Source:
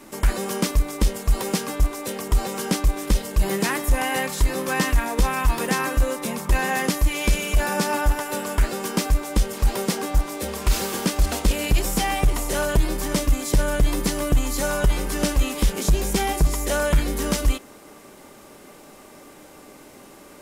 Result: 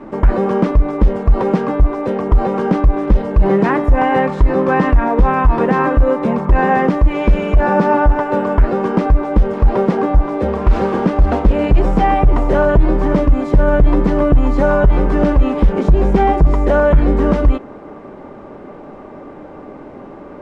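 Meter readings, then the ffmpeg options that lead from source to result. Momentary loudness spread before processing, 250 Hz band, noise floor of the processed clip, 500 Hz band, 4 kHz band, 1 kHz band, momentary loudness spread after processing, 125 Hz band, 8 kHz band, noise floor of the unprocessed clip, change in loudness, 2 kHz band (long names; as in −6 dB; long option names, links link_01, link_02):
4 LU, +11.0 dB, −35 dBFS, +12.0 dB, −8.5 dB, +10.5 dB, 4 LU, +8.5 dB, below −20 dB, −46 dBFS, +8.5 dB, +3.5 dB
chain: -af "lowpass=1100,alimiter=level_in=15.5dB:limit=-1dB:release=50:level=0:latency=1,volume=-2.5dB"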